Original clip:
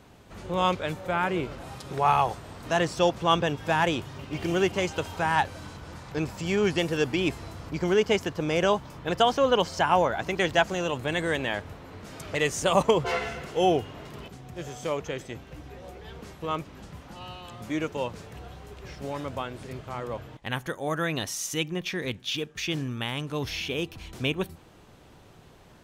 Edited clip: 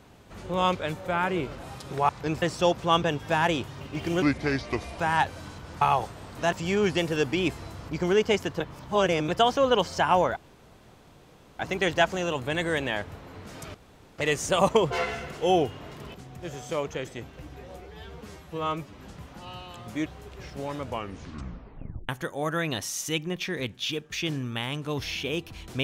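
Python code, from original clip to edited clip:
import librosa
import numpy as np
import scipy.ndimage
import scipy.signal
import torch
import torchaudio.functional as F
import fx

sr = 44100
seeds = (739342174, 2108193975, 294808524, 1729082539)

y = fx.edit(x, sr, fx.swap(start_s=2.09, length_s=0.71, other_s=6.0, other_length_s=0.33),
    fx.speed_span(start_s=4.6, length_s=0.58, speed=0.75),
    fx.reverse_span(start_s=8.41, length_s=0.68),
    fx.insert_room_tone(at_s=10.17, length_s=1.23),
    fx.insert_room_tone(at_s=12.32, length_s=0.44),
    fx.stretch_span(start_s=15.94, length_s=0.79, factor=1.5),
    fx.cut(start_s=17.8, length_s=0.71),
    fx.tape_stop(start_s=19.28, length_s=1.26), tone=tone)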